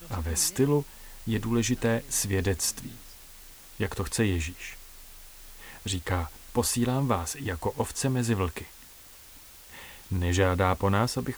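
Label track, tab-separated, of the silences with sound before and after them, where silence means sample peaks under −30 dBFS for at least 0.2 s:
0.820000	1.270000	silence
2.870000	3.800000	silence
4.680000	5.860000	silence
6.260000	6.550000	silence
8.610000	10.120000	silence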